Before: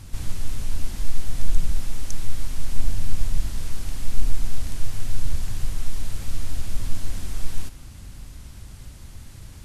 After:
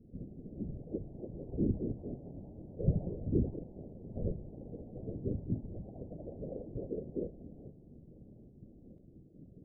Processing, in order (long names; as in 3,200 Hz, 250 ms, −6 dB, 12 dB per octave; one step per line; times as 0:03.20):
pitch shifter gated in a rhythm +10 semitones, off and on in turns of 121 ms
high-pass filter 100 Hz 12 dB per octave
parametric band 320 Hz +14.5 dB 0.37 octaves
noise reduction from a noise print of the clip's start 19 dB
flanger 0.25 Hz, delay 6.8 ms, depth 2.9 ms, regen −81%
in parallel at −3.5 dB: sample-and-hold swept by an LFO 18×, swing 100% 1.9 Hz
on the sum: Chebyshev low-pass with heavy ripple 660 Hz, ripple 9 dB
notch comb filter 210 Hz
random phases in short frames
delay with pitch and tempo change per echo 391 ms, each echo +2 semitones, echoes 2, each echo −6 dB
level +13 dB